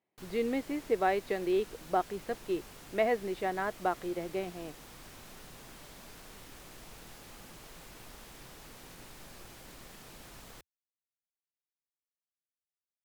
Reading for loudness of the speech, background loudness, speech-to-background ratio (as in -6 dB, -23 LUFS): -33.5 LUFS, -50.0 LUFS, 16.5 dB